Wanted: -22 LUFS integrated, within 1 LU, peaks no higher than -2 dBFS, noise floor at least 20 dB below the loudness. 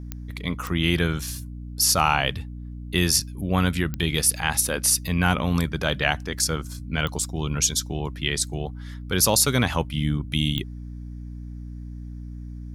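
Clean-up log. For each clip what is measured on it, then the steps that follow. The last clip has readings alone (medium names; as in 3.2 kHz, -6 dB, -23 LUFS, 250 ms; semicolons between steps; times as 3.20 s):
clicks found 5; hum 60 Hz; highest harmonic 300 Hz; hum level -33 dBFS; loudness -23.0 LUFS; peak level -4.5 dBFS; loudness target -22.0 LUFS
-> de-click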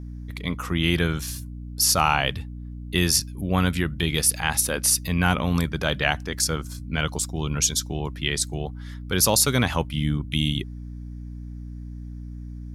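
clicks found 0; hum 60 Hz; highest harmonic 300 Hz; hum level -33 dBFS
-> hum notches 60/120/180/240/300 Hz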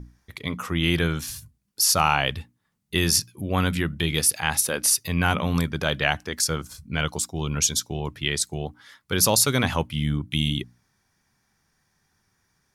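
hum not found; loudness -23.5 LUFS; peak level -4.5 dBFS; loudness target -22.0 LUFS
-> trim +1.5 dB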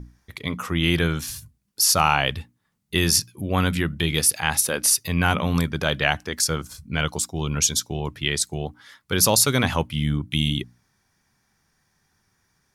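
loudness -22.0 LUFS; peak level -3.0 dBFS; noise floor -70 dBFS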